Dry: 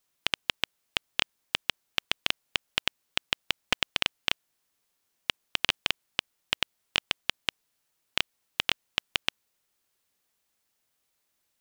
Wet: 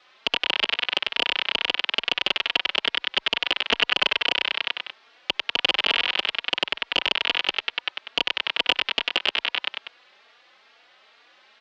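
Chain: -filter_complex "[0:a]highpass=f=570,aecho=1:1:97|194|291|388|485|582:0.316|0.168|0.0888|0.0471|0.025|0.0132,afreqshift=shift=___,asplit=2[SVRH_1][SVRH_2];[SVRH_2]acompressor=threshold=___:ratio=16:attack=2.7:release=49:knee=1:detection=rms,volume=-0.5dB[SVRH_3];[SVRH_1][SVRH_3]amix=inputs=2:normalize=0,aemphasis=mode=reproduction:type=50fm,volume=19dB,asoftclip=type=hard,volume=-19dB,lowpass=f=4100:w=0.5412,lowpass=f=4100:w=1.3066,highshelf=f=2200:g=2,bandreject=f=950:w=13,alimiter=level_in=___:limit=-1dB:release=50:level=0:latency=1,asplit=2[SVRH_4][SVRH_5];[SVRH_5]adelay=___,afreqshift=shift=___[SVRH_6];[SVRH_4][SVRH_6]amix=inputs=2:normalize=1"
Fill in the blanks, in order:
-16, -34dB, 26dB, 3.6, 2.3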